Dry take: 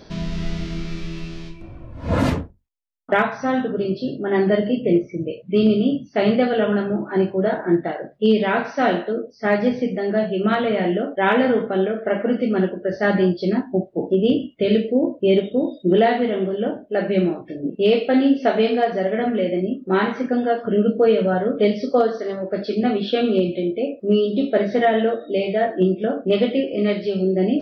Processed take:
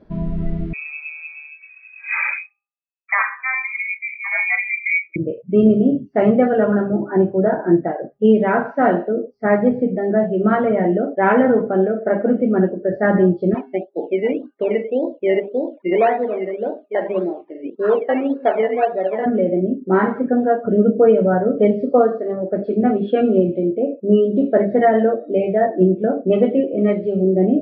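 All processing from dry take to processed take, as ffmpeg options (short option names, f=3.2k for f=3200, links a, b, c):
-filter_complex "[0:a]asettb=1/sr,asplit=3[a][b][c];[a]atrim=end=0.734[d];[b]atrim=start=0.73:end=5.16,asetpts=PTS-STARTPTS,afade=t=in:d=0.004:c=qsin,afade=t=out:st=4.426:d=0.004:c=qsin,lowpass=f=2.2k:t=q:w=0.5098,lowpass=f=2.2k:t=q:w=0.6013,lowpass=f=2.2k:t=q:w=0.9,lowpass=f=2.2k:t=q:w=2.563,afreqshift=-2600,highpass=890[e];[c]atrim=start=5.156[f];[d][e]acrossfade=d=0.004:c1=hsin:c2=qsin[g];[g][f]acrossfade=d=0.004:c1=qsin:c2=hsin,asettb=1/sr,asplit=3[h][i][j];[h]atrim=end=13.544[k];[i]atrim=start=13.54:end=19.26,asetpts=PTS-STARTPTS,afade=t=in:d=0.004:c=qsin,afade=t=out:st=5.716:d=0.004:c=qsin,acrusher=samples=14:mix=1:aa=0.000001:lfo=1:lforange=8.4:lforate=1.8,highpass=420,lowpass=2.9k[l];[j]atrim=start=19.256[m];[k][l]acrossfade=d=0.004:c1=hsin:c2=qsin[n];[n][m]acrossfade=d=0.004:c1=qsin:c2=hsin,lowpass=1.7k,bandreject=f=405.5:t=h:w=4,bandreject=f=811:t=h:w=4,bandreject=f=1.2165k:t=h:w=4,afftdn=nr=13:nf=-33,volume=3.5dB"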